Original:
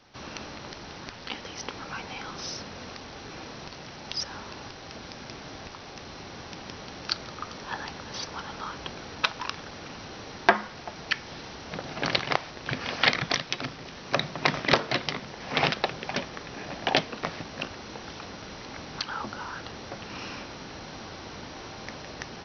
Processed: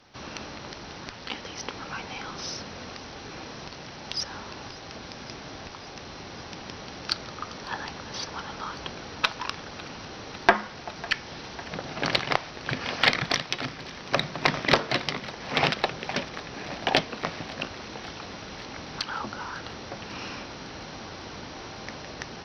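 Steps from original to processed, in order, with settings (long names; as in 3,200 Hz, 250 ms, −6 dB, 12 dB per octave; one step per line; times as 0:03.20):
harmonic generator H 4 −34 dB, 6 −39 dB, 8 −35 dB, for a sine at −2.5 dBFS
feedback echo with a high-pass in the loop 551 ms, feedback 81%, level −20 dB
level +1 dB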